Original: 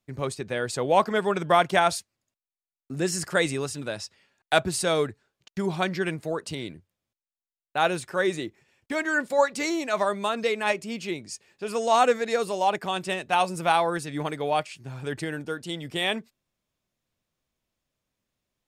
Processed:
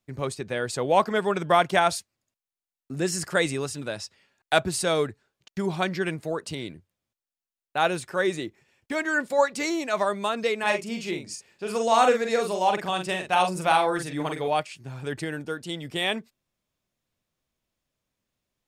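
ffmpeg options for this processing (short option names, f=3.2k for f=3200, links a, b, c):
-filter_complex "[0:a]asettb=1/sr,asplit=3[a][b][c];[a]atrim=end=10.594[d];[b]atrim=start=10.59:end=14.48,asetpts=PTS-STARTPTS,afade=t=in:d=0.004:c=qsin,afade=t=out:st=3.886:d=0.004:c=qsin,asplit=2[e][f];[f]adelay=44,volume=-5.5dB[g];[e][g]amix=inputs=2:normalize=0,atrim=end_sample=171549[h];[c]atrim=start=14.476[i];[d][h]acrossfade=d=0.004:c1=hsin:c2=qsin[j];[j][i]acrossfade=d=0.004:c1=qsin:c2=hsin"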